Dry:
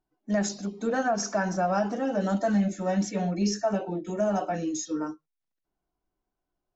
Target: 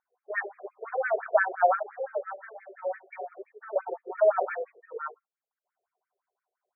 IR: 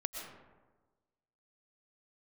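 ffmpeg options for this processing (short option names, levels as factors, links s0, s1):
-filter_complex "[0:a]asettb=1/sr,asplit=3[s0][s1][s2];[s0]atrim=end=0.714[s3];[s1]atrim=start=0.71:end=1.14,asetpts=PTS-STARTPTS,afade=t=in:d=0.004:c=qsin,afade=t=out:st=0.426:d=0.004:c=qsin,aeval=exprs='(tanh(22.4*val(0)+0.5)-tanh(0.5))/22.4':c=same[s4];[s2]atrim=start=1.136[s5];[s3][s4]acrossfade=d=0.004:c1=hsin:c2=qsin[s6];[s6][s5]acrossfade=d=0.004:c1=qsin:c2=hsin,asettb=1/sr,asplit=3[s7][s8][s9];[s7]atrim=end=1.754[s10];[s8]atrim=start=1.75:end=3.76,asetpts=PTS-STARTPTS,afade=t=in:d=0.004:c=qsin,afade=t=out:st=2.006:d=0.004:c=qsin,acompressor=threshold=0.0224:ratio=6[s11];[s9]atrim=start=3.756[s12];[s10][s11]acrossfade=d=0.004:c1=hsin:c2=qsin[s13];[s13][s12]acrossfade=d=0.004:c1=qsin:c2=hsin,afftfilt=real='re*between(b*sr/1024,490*pow(1800/490,0.5+0.5*sin(2*PI*5.8*pts/sr))/1.41,490*pow(1800/490,0.5+0.5*sin(2*PI*5.8*pts/sr))*1.41)':imag='im*between(b*sr/1024,490*pow(1800/490,0.5+0.5*sin(2*PI*5.8*pts/sr))/1.41,490*pow(1800/490,0.5+0.5*sin(2*PI*5.8*pts/sr))*1.41)':win_size=1024:overlap=0.75,volume=2.37"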